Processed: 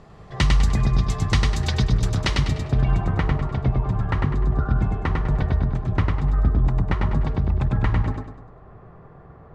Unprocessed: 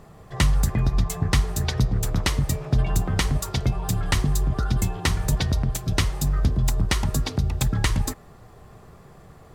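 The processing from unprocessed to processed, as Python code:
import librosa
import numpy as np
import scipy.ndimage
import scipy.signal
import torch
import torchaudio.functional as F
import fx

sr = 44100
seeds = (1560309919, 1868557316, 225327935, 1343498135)

p1 = fx.filter_sweep_lowpass(x, sr, from_hz=5000.0, to_hz=1400.0, start_s=2.2, end_s=3.29, q=0.91)
y = p1 + fx.echo_feedback(p1, sr, ms=100, feedback_pct=39, wet_db=-3.0, dry=0)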